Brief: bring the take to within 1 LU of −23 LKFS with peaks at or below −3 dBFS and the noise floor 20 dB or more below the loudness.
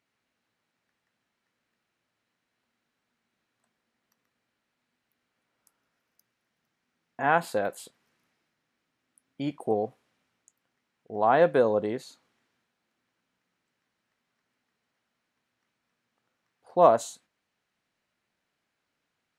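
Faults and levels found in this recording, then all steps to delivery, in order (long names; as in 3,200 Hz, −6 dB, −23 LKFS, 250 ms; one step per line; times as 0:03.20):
integrated loudness −25.5 LKFS; sample peak −6.0 dBFS; target loudness −23.0 LKFS
→ level +2.5 dB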